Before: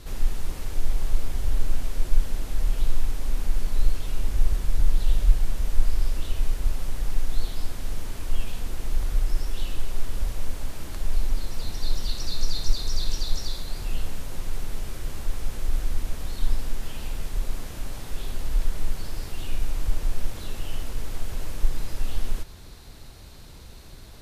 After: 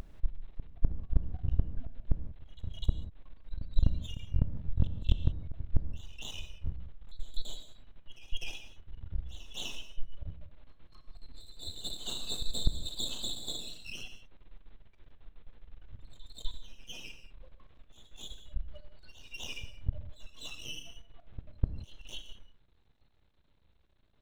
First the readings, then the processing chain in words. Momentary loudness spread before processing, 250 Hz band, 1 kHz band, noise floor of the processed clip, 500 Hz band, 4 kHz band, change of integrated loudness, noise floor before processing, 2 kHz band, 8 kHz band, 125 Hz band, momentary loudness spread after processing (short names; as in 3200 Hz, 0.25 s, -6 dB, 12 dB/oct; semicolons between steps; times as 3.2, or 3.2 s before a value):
8 LU, -5.0 dB, -15.5 dB, -65 dBFS, -11.5 dB, -2.5 dB, -6.5 dB, -43 dBFS, -8.0 dB, n/a, -5.5 dB, 20 LU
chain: steep low-pass 4000 Hz 96 dB/oct; spectral noise reduction 28 dB; dynamic EQ 2700 Hz, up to +5 dB, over -58 dBFS, Q 0.96; half-wave rectifier; flipped gate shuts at -16 dBFS, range -34 dB; reverse echo 0.251 s -14.5 dB; non-linear reverb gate 0.21 s flat, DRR 8.5 dB; gain +5 dB